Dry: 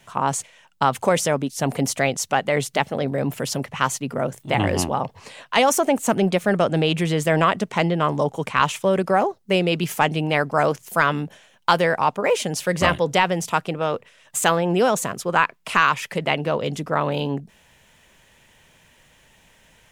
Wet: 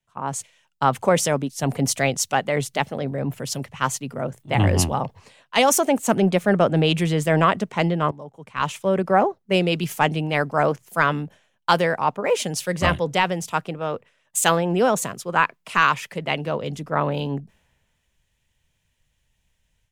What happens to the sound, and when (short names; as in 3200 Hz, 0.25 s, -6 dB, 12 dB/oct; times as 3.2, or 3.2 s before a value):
8.11–9.07 fade in, from -18.5 dB
whole clip: low shelf 200 Hz +4 dB; AGC gain up to 7 dB; three-band expander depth 70%; gain -4.5 dB